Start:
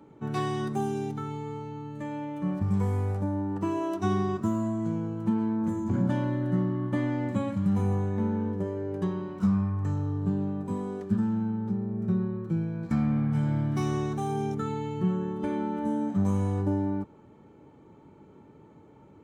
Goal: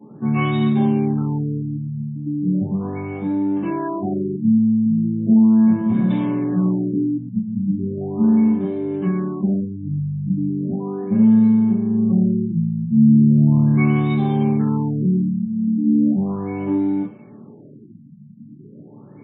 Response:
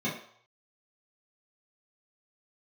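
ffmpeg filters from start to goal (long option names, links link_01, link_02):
-filter_complex "[0:a]asplit=2[link_01][link_02];[link_02]acompressor=threshold=-38dB:ratio=10,volume=-1.5dB[link_03];[link_01][link_03]amix=inputs=2:normalize=0,aeval=exprs='(tanh(12.6*val(0)+0.4)-tanh(0.4))/12.6':channel_layout=same,crystalizer=i=8.5:c=0[link_04];[1:a]atrim=start_sample=2205[link_05];[link_04][link_05]afir=irnorm=-1:irlink=0,afftfilt=real='re*lt(b*sr/1024,240*pow(4000/240,0.5+0.5*sin(2*PI*0.37*pts/sr)))':imag='im*lt(b*sr/1024,240*pow(4000/240,0.5+0.5*sin(2*PI*0.37*pts/sr)))':win_size=1024:overlap=0.75,volume=-7dB"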